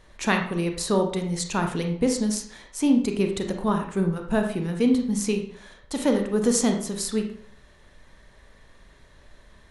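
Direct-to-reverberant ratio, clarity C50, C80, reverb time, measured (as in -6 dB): 3.5 dB, 6.5 dB, 10.5 dB, 0.55 s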